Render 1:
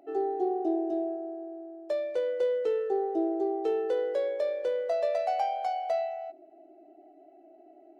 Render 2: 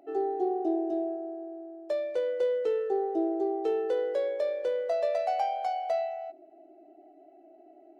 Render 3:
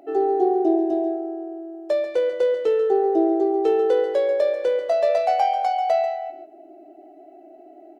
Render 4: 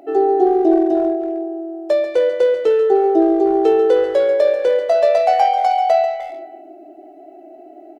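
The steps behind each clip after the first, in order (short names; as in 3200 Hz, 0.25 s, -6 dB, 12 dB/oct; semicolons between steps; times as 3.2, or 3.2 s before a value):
nothing audible
echo 0.14 s -10.5 dB; gain +8.5 dB
speakerphone echo 0.3 s, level -13 dB; gain +5.5 dB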